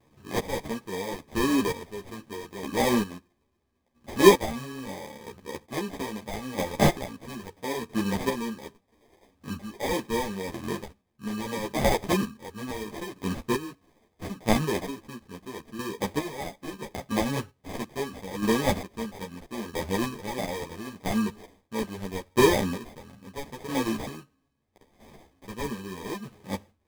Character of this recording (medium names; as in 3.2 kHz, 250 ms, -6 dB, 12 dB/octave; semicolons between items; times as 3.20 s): chopped level 0.76 Hz, depth 65%, duty 30%; aliases and images of a low sample rate 1.4 kHz, jitter 0%; a shimmering, thickened sound